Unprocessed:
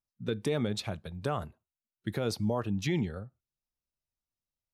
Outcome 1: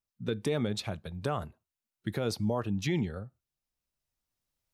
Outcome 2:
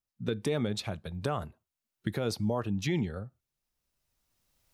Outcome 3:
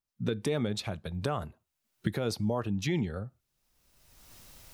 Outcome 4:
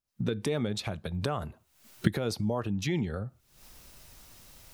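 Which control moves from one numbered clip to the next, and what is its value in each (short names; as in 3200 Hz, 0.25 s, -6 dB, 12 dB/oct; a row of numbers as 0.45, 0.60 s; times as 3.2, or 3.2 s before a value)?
recorder AGC, rising by: 5.2, 13, 32, 82 dB/s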